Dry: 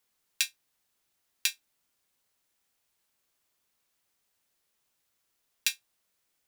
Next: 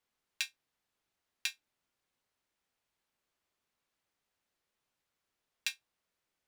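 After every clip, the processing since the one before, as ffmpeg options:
ffmpeg -i in.wav -af "lowpass=frequency=2900:poles=1,volume=-2.5dB" out.wav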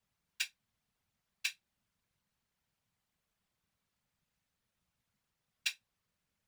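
ffmpeg -i in.wav -af "lowshelf=frequency=200:width_type=q:width=3:gain=8.5,afftfilt=real='hypot(re,im)*cos(2*PI*random(0))':imag='hypot(re,im)*sin(2*PI*random(1))':win_size=512:overlap=0.75,volume=5.5dB" out.wav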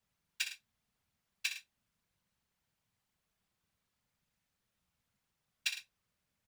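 ffmpeg -i in.wav -af "aecho=1:1:61|107:0.355|0.211" out.wav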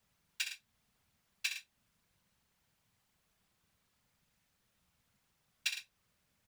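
ffmpeg -i in.wav -af "alimiter=level_in=3.5dB:limit=-24dB:level=0:latency=1:release=352,volume=-3.5dB,volume=6.5dB" out.wav

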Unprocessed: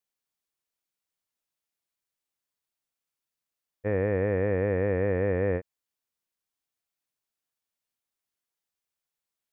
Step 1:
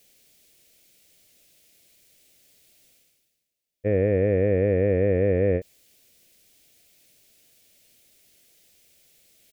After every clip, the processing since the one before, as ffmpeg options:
ffmpeg -i in.wav -af "areverse,acompressor=mode=upward:threshold=-43dB:ratio=2.5,areverse,firequalizer=gain_entry='entry(620,0);entry(940,-19);entry(2200,-1)':delay=0.05:min_phase=1,volume=5dB" out.wav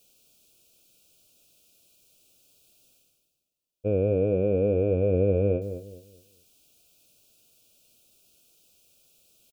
ffmpeg -i in.wav -filter_complex "[0:a]asuperstop=centerf=1900:order=12:qfactor=2.2,asplit=2[link_01][link_02];[link_02]adelay=209,lowpass=frequency=1000:poles=1,volume=-9.5dB,asplit=2[link_03][link_04];[link_04]adelay=209,lowpass=frequency=1000:poles=1,volume=0.32,asplit=2[link_05][link_06];[link_06]adelay=209,lowpass=frequency=1000:poles=1,volume=0.32,asplit=2[link_07][link_08];[link_08]adelay=209,lowpass=frequency=1000:poles=1,volume=0.32[link_09];[link_01][link_03][link_05][link_07][link_09]amix=inputs=5:normalize=0,volume=-2.5dB" out.wav

